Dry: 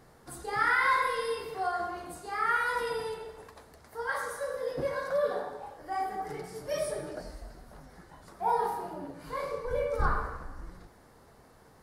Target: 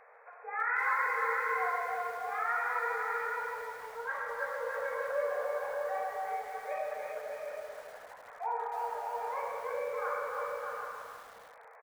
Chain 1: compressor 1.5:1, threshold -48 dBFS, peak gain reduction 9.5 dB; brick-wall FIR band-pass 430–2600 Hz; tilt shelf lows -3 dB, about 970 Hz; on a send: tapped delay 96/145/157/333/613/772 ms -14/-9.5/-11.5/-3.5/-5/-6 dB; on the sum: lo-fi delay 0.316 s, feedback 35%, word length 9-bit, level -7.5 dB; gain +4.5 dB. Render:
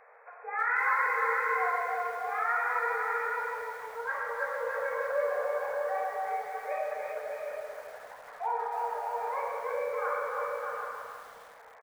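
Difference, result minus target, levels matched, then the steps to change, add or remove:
compressor: peak gain reduction -3 dB
change: compressor 1.5:1, threshold -57 dBFS, peak gain reduction 12.5 dB

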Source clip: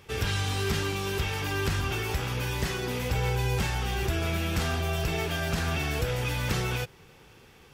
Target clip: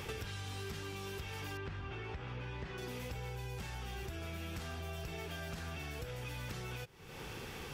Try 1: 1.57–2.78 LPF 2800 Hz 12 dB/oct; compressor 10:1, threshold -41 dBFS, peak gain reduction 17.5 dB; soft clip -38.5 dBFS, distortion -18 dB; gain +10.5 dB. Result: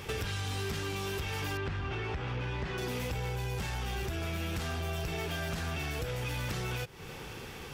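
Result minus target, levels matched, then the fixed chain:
compressor: peak gain reduction -9.5 dB
1.57–2.78 LPF 2800 Hz 12 dB/oct; compressor 10:1, threshold -51.5 dBFS, peak gain reduction 27 dB; soft clip -38.5 dBFS, distortion -33 dB; gain +10.5 dB

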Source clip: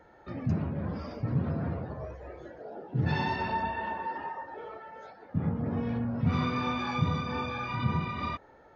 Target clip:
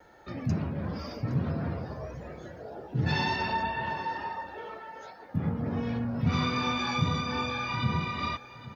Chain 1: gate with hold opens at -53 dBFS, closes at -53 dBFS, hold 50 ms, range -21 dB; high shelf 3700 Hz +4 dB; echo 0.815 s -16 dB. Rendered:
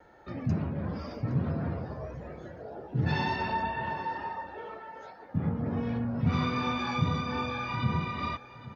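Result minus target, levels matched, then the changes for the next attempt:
8000 Hz band -7.0 dB
change: high shelf 3700 Hz +14.5 dB

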